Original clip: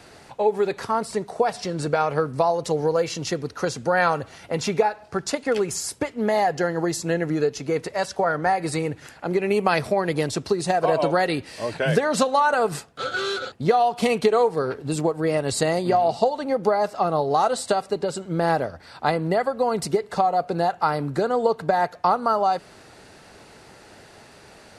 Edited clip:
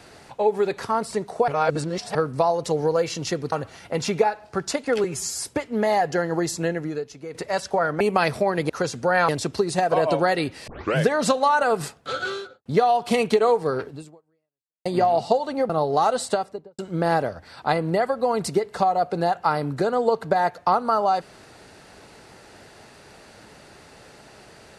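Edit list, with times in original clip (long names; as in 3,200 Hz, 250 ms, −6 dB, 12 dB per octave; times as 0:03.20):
0:01.48–0:02.15: reverse
0:03.52–0:04.11: move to 0:10.20
0:05.63–0:05.90: time-stretch 1.5×
0:07.06–0:07.80: fade out quadratic, to −12 dB
0:08.46–0:09.51: remove
0:11.59: tape start 0.28 s
0:13.08–0:13.57: fade out and dull
0:14.79–0:15.77: fade out exponential
0:16.61–0:17.07: remove
0:17.61–0:18.16: fade out and dull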